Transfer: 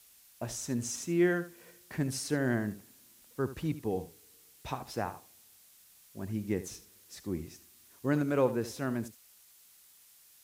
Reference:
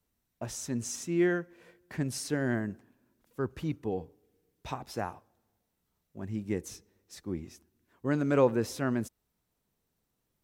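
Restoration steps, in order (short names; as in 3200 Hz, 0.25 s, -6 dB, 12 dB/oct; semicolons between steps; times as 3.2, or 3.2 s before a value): noise print and reduce 20 dB; inverse comb 75 ms -14 dB; gain 0 dB, from 8.22 s +3.5 dB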